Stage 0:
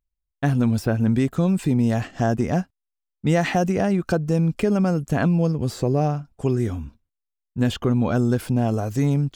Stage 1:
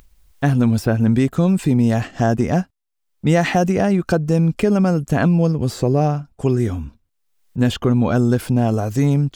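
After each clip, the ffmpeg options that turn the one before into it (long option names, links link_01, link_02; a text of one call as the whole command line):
ffmpeg -i in.wav -af "acompressor=mode=upward:threshold=-34dB:ratio=2.5,volume=4dB" out.wav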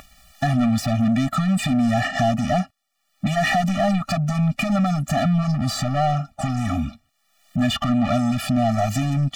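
ffmpeg -i in.wav -filter_complex "[0:a]acompressor=threshold=-22dB:ratio=2.5,asplit=2[link_01][link_02];[link_02]highpass=frequency=720:poles=1,volume=28dB,asoftclip=type=tanh:threshold=-11dB[link_03];[link_01][link_03]amix=inputs=2:normalize=0,lowpass=frequency=3600:poles=1,volume=-6dB,afftfilt=real='re*eq(mod(floor(b*sr/1024/280),2),0)':imag='im*eq(mod(floor(b*sr/1024/280),2),0)':win_size=1024:overlap=0.75" out.wav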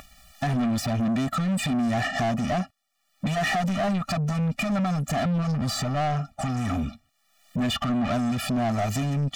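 ffmpeg -i in.wav -af "asoftclip=type=tanh:threshold=-20dB,volume=-1dB" out.wav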